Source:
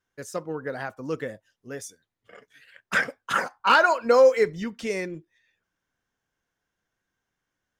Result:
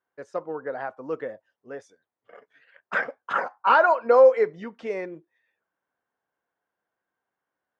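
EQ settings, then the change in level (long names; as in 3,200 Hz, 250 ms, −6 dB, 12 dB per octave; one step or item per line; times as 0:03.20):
resonant band-pass 750 Hz, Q 1
high-frequency loss of the air 52 metres
+3.5 dB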